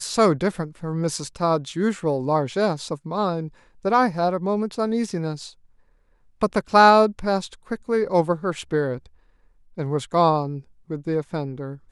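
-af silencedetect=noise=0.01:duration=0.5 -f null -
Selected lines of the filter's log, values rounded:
silence_start: 5.52
silence_end: 6.41 | silence_duration: 0.90
silence_start: 9.06
silence_end: 9.77 | silence_duration: 0.71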